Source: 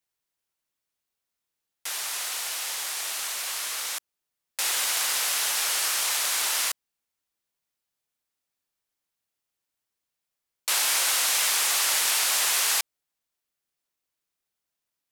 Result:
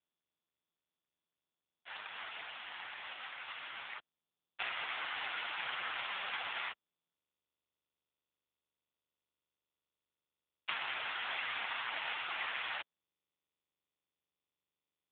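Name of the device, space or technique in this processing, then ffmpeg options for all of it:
voicemail: -af "agate=range=-33dB:threshold=-19dB:ratio=3:detection=peak,highpass=f=170:w=0.5412,highpass=f=170:w=1.3066,highpass=360,lowpass=3.1k,acompressor=threshold=-47dB:ratio=10,volume=16.5dB" -ar 8000 -c:a libopencore_amrnb -b:a 5150

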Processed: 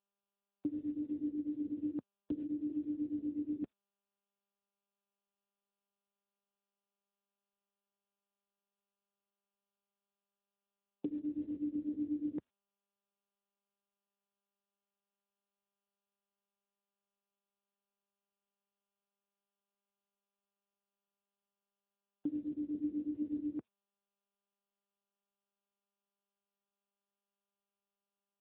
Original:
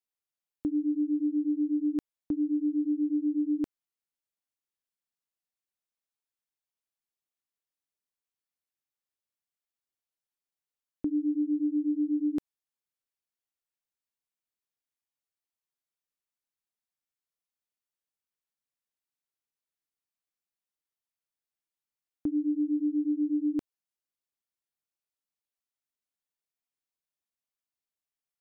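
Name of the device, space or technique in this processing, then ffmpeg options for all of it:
mobile call with aggressive noise cancelling: -af "highpass=130,afftdn=nr=24:nf=-52,volume=-6dB" -ar 8000 -c:a libopencore_amrnb -b:a 10200

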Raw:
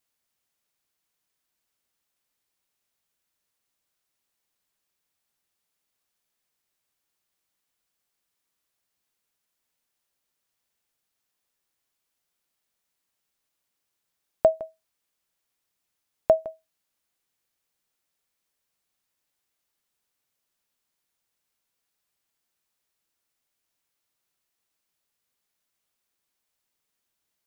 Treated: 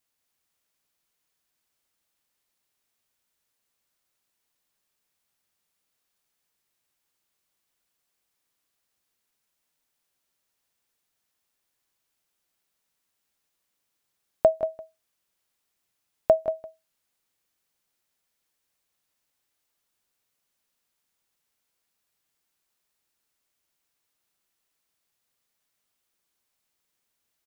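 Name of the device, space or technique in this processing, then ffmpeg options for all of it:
ducked delay: -filter_complex "[0:a]asplit=3[a][b][c];[b]adelay=182,volume=-3dB[d];[c]apad=whole_len=1219246[e];[d][e]sidechaincompress=threshold=-24dB:ratio=8:attack=7:release=550[f];[a][f]amix=inputs=2:normalize=0"

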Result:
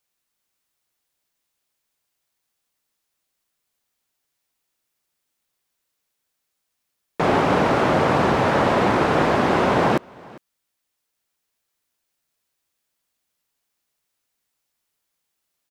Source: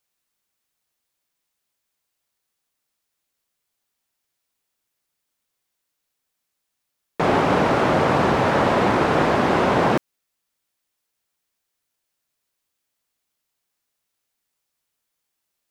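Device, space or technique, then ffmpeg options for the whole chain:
ducked delay: -filter_complex "[0:a]asplit=3[a][b][c];[b]adelay=401,volume=-5dB[d];[c]apad=whole_len=710224[e];[d][e]sidechaincompress=threshold=-40dB:ratio=6:attack=48:release=1040[f];[a][f]amix=inputs=2:normalize=0"

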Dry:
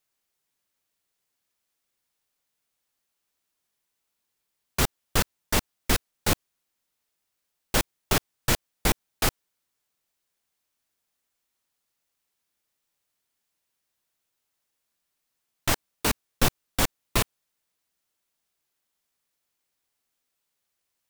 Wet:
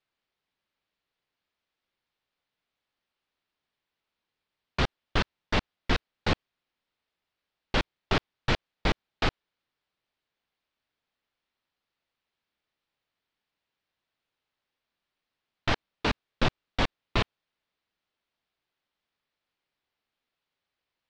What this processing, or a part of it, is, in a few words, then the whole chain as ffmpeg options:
synthesiser wavefolder: -af "aeval=exprs='0.178*(abs(mod(val(0)/0.178+3,4)-2)-1)':c=same,lowpass=f=4.2k:w=0.5412,lowpass=f=4.2k:w=1.3066"

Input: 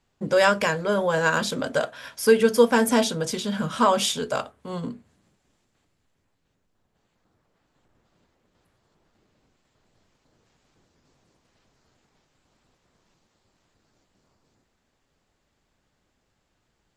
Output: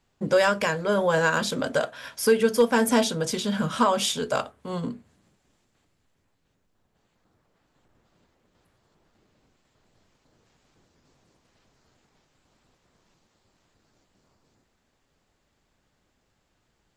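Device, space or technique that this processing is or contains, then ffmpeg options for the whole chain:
clipper into limiter: -af "asoftclip=type=hard:threshold=-8dB,alimiter=limit=-12dB:level=0:latency=1:release=461,volume=1dB"

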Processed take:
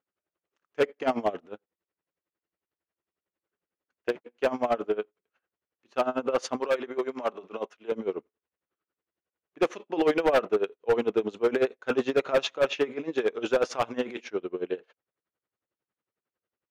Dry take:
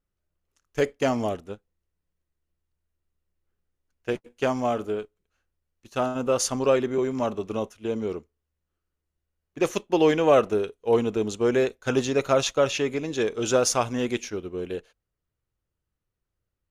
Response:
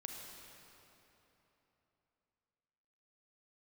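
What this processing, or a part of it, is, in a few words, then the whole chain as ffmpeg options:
helicopter radio: -filter_complex "[0:a]highpass=310,lowpass=2.7k,aeval=exprs='val(0)*pow(10,-19*(0.5-0.5*cos(2*PI*11*n/s))/20)':c=same,asoftclip=type=hard:threshold=-23dB,asettb=1/sr,asplit=3[a][b][c];[a]atrim=end=6.604[d];[b]atrim=start=6.6:end=7.92,asetpts=PTS-STARTPTS,afade=t=in:d=0.004:c=qsin,afade=t=out:st=1.316:d=0.004:c=qsin,lowshelf=f=300:g=-11[e];[c]atrim=start=7.916[f];[d][e]acrossfade=d=0.004:c1=hsin:c2=qsin[g];[g][f]acrossfade=d=0.004:c1=qsin:c2=hsin,volume=6dB"

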